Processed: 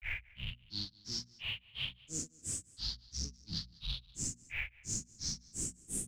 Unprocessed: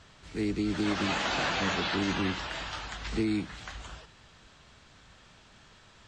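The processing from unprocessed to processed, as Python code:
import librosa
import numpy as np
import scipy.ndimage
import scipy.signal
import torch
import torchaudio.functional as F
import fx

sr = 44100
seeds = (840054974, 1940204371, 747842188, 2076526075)

p1 = np.sign(x) * np.sqrt(np.mean(np.square(x)))
p2 = fx.curve_eq(p1, sr, hz=(160.0, 510.0, 2400.0, 4500.0, 8400.0), db=(0, -24, -19, 12, -26))
p3 = fx.granulator(p2, sr, seeds[0], grain_ms=220.0, per_s=2.9, spray_ms=100.0, spread_st=12)
p4 = fx.hum_notches(p3, sr, base_hz=60, count=4)
p5 = p4 + fx.echo_single(p4, sr, ms=195, db=-23.5, dry=0)
y = p5 * 10.0 ** (-1.0 / 20.0)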